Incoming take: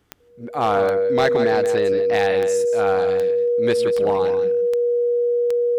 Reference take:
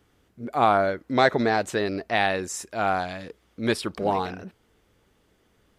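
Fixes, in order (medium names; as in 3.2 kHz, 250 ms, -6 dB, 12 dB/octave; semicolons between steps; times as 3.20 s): clip repair -11 dBFS; de-click; band-stop 480 Hz, Q 30; inverse comb 175 ms -10 dB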